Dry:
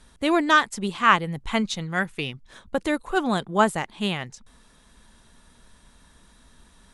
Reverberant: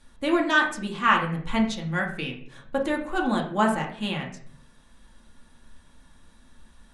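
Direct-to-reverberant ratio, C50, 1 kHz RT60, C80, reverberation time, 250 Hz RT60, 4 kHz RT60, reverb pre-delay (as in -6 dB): -1.0 dB, 8.0 dB, 0.45 s, 12.0 dB, 0.60 s, 0.75 s, 0.40 s, 3 ms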